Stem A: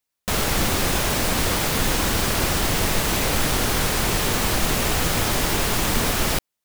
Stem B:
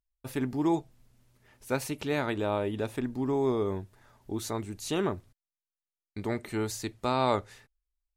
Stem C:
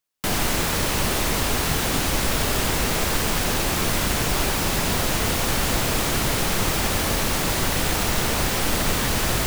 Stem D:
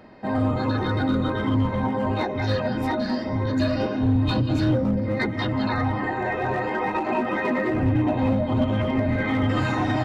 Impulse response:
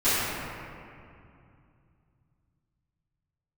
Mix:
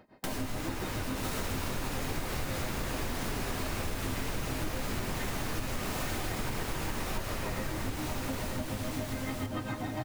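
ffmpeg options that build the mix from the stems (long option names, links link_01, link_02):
-filter_complex "[0:a]alimiter=limit=-18dB:level=0:latency=1,adelay=950,volume=-13.5dB,asplit=2[link_01][link_02];[link_02]volume=-4.5dB[link_03];[1:a]volume=-13dB,asplit=2[link_04][link_05];[2:a]volume=-9dB,afade=type=out:start_time=8.04:duration=0.54:silence=0.251189,asplit=3[link_06][link_07][link_08];[link_07]volume=-19dB[link_09];[link_08]volume=-8dB[link_10];[3:a]tremolo=f=7.1:d=0.9,volume=-8dB,asplit=2[link_11][link_12];[link_12]volume=-6.5dB[link_13];[link_05]apad=whole_len=417278[link_14];[link_06][link_14]sidechaincompress=threshold=-53dB:ratio=8:attack=12:release=849[link_15];[4:a]atrim=start_sample=2205[link_16];[link_03][link_09]amix=inputs=2:normalize=0[link_17];[link_17][link_16]afir=irnorm=-1:irlink=0[link_18];[link_10][link_13]amix=inputs=2:normalize=0,aecho=0:1:927|1854|2781|3708:1|0.29|0.0841|0.0244[link_19];[link_01][link_04][link_15][link_11][link_18][link_19]amix=inputs=6:normalize=0,acompressor=threshold=-31dB:ratio=5"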